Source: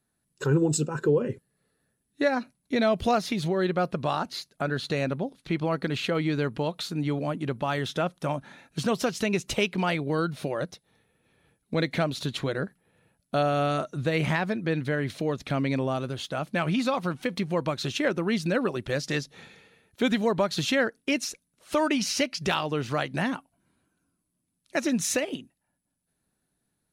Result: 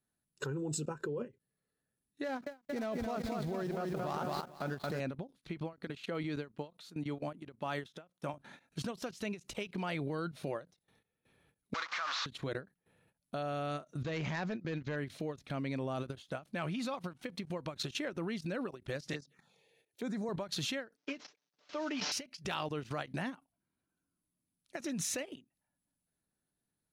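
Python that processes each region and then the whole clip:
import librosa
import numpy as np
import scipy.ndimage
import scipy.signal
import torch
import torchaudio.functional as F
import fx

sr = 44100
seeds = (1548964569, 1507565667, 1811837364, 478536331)

y = fx.chain(x, sr, fx.median_filter(points=15),
    fx.echo_crushed(ms=224, feedback_pct=55, bits=8, wet_db=-5.0), at=(2.24, 5.0))
y = fx.chain(y, sr, fx.highpass(hz=140.0, slope=12),
    fx.upward_expand(threshold_db=-40.0, expansion=1.5), at=(5.73, 8.34))
y = fx.chain(y, sr, fx.delta_mod(bps=32000, step_db=-25.5),
    fx.highpass_res(hz=1200.0, q=4.6), at=(11.74, 12.26))
y = fx.chain(y, sr, fx.clip_hard(threshold_db=-21.5),
    fx.resample_bad(factor=3, down='none', up='filtered'), at=(14.02, 14.96))
y = fx.chain(y, sr, fx.highpass(hz=130.0, slope=24),
    fx.env_phaser(low_hz=180.0, high_hz=3000.0, full_db=-26.0), at=(19.13, 20.29))
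y = fx.chain(y, sr, fx.cvsd(bps=32000),
    fx.highpass(hz=250.0, slope=12),
    fx.comb(ms=6.8, depth=0.69), at=(20.96, 22.12))
y = fx.level_steps(y, sr, step_db=17)
y = fx.end_taper(y, sr, db_per_s=270.0)
y = F.gain(torch.from_numpy(y), -2.5).numpy()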